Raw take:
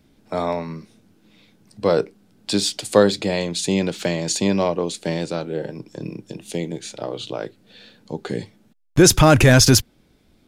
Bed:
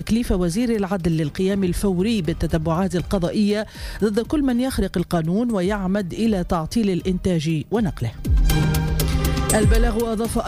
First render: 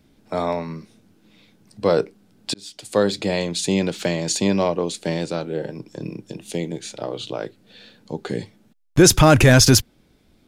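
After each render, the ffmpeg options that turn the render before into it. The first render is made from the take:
-filter_complex "[0:a]asplit=2[s0][s1];[s0]atrim=end=2.54,asetpts=PTS-STARTPTS,afade=t=out:st=2.536:d=0.004:c=hsin[s2];[s1]atrim=start=2.54,asetpts=PTS-STARTPTS,afade=t=in:d=0.76[s3];[s2][s3]concat=n=2:v=0:a=1"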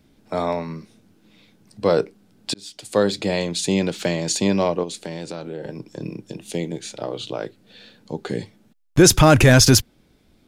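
-filter_complex "[0:a]asettb=1/sr,asplit=3[s0][s1][s2];[s0]atrim=end=4.834[s3];[s1]atrim=start=4.83:end=5.66,asetpts=PTS-STARTPTS,afade=t=in:d=0.004:c=qsin,afade=t=out:st=0.826:d=0.004:c=qsin,acompressor=threshold=0.0447:ratio=4:attack=3.2:release=140:knee=1:detection=peak[s4];[s2]atrim=start=5.656[s5];[s3][s4]acrossfade=d=0.004:c1=hsin:c2=qsin[s6];[s6][s5]acrossfade=d=0.004:c1=qsin:c2=hsin"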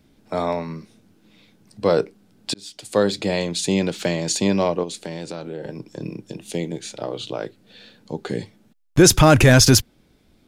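-af anull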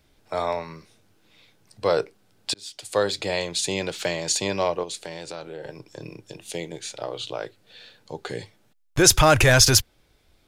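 -af "equalizer=f=220:t=o:w=1.3:g=-14.5"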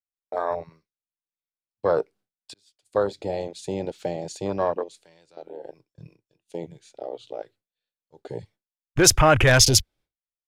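-af "afwtdn=0.0562,agate=range=0.0224:threshold=0.00447:ratio=3:detection=peak"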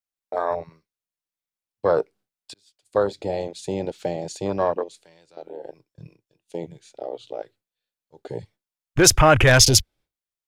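-af "volume=1.26,alimiter=limit=0.891:level=0:latency=1"

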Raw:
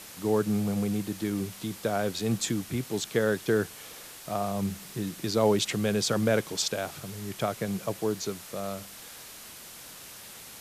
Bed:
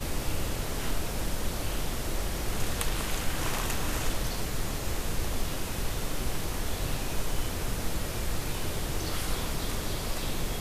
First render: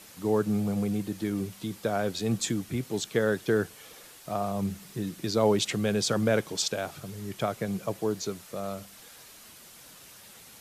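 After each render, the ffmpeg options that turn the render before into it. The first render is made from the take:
-af "afftdn=nr=6:nf=-46"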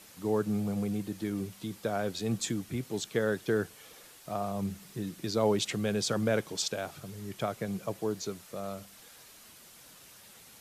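-af "volume=0.668"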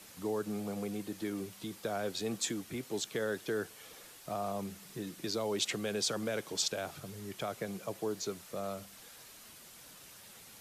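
-filter_complex "[0:a]acrossover=split=270|2700[s0][s1][s2];[s0]acompressor=threshold=0.00501:ratio=6[s3];[s1]alimiter=level_in=1.5:limit=0.0631:level=0:latency=1:release=68,volume=0.668[s4];[s3][s4][s2]amix=inputs=3:normalize=0"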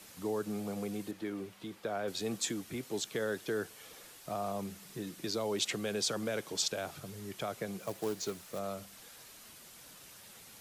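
-filter_complex "[0:a]asettb=1/sr,asplit=3[s0][s1][s2];[s0]atrim=end=1.114[s3];[s1]atrim=start=1.11:end=2.08,asetpts=PTS-STARTPTS,afade=t=in:d=0.004:c=qsin,afade=t=out:st=0.966:d=0.004:c=qsin,bass=f=250:g=-4,treble=f=4000:g=-10[s4];[s2]atrim=start=2.076[s5];[s3][s4]acrossfade=d=0.004:c1=hsin:c2=qsin[s6];[s6][s5]acrossfade=d=0.004:c1=qsin:c2=hsin,asettb=1/sr,asplit=3[s7][s8][s9];[s7]atrim=end=7.804[s10];[s8]atrim=start=7.8:end=8.59,asetpts=PTS-STARTPTS,afade=t=in:d=0.004:c=qsin,afade=t=out:st=0.786:d=0.004:c=qsin,acrusher=bits=3:mode=log:mix=0:aa=0.000001[s11];[s9]atrim=start=8.586[s12];[s10][s11]acrossfade=d=0.004:c1=hsin:c2=qsin[s13];[s13][s12]acrossfade=d=0.004:c1=qsin:c2=hsin"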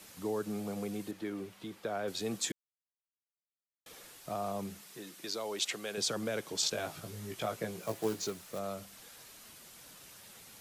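-filter_complex "[0:a]asettb=1/sr,asplit=3[s0][s1][s2];[s0]atrim=end=4.814[s3];[s1]atrim=start=4.81:end=5.98,asetpts=PTS-STARTPTS,afade=t=in:d=0.004:c=qsin,afade=t=out:st=1.166:d=0.004:c=qsin,highpass=f=580:p=1[s4];[s2]atrim=start=5.976[s5];[s3][s4]acrossfade=d=0.004:c1=hsin:c2=qsin[s6];[s6][s5]acrossfade=d=0.004:c1=qsin:c2=hsin,asettb=1/sr,asplit=3[s7][s8][s9];[s7]atrim=end=6.614[s10];[s8]atrim=start=6.61:end=8.27,asetpts=PTS-STARTPTS,afade=t=in:d=0.004:c=qsin,afade=t=out:st=1.656:d=0.004:c=qsin,asplit=2[s11][s12];[s12]adelay=18,volume=0.668[s13];[s11][s13]amix=inputs=2:normalize=0,atrim=end_sample=73206[s14];[s9]atrim=start=8.266[s15];[s10][s14]acrossfade=d=0.004:c1=hsin:c2=qsin[s16];[s16][s15]acrossfade=d=0.004:c1=qsin:c2=hsin,asplit=3[s17][s18][s19];[s17]atrim=end=2.52,asetpts=PTS-STARTPTS,afade=t=out:st=2.516:d=0.004:c=hsin[s20];[s18]atrim=start=2.52:end=3.86,asetpts=PTS-STARTPTS,volume=0[s21];[s19]atrim=start=3.86,asetpts=PTS-STARTPTS,afade=t=in:d=0.004:c=hsin[s22];[s20][s21][s22]concat=n=3:v=0:a=1"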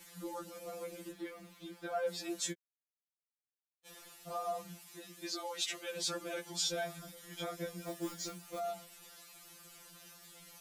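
-af "acrusher=bits=11:mix=0:aa=0.000001,afftfilt=real='re*2.83*eq(mod(b,8),0)':imag='im*2.83*eq(mod(b,8),0)':win_size=2048:overlap=0.75"

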